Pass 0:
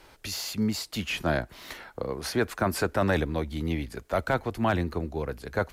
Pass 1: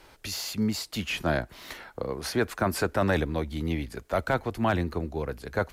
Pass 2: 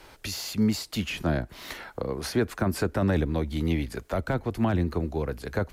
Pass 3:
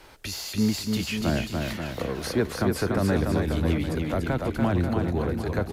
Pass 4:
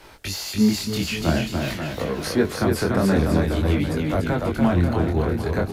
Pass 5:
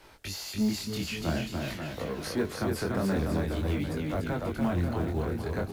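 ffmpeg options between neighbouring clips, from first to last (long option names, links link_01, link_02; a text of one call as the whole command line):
ffmpeg -i in.wav -af anull out.wav
ffmpeg -i in.wav -filter_complex "[0:a]acrossover=split=400[link_01][link_02];[link_02]acompressor=threshold=-37dB:ratio=2.5[link_03];[link_01][link_03]amix=inputs=2:normalize=0,volume=3.5dB" out.wav
ffmpeg -i in.wav -af "aecho=1:1:290|536.5|746|924.1|1076:0.631|0.398|0.251|0.158|0.1" out.wav
ffmpeg -i in.wav -af "flanger=delay=19.5:depth=6:speed=0.48,volume=7dB" out.wav
ffmpeg -i in.wav -af "asoftclip=type=tanh:threshold=-10.5dB,acrusher=bits=8:mode=log:mix=0:aa=0.000001,volume=-8dB" out.wav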